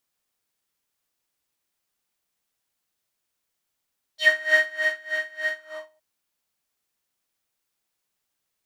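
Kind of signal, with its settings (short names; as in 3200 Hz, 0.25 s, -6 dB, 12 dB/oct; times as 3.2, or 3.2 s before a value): synth patch with tremolo D#5, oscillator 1 square, interval +19 st, sub -16 dB, noise -6 dB, filter bandpass, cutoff 840 Hz, Q 4.6, filter envelope 2.5 oct, filter decay 0.10 s, attack 0.124 s, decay 0.69 s, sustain -11 dB, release 0.47 s, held 1.35 s, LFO 3.3 Hz, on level 22.5 dB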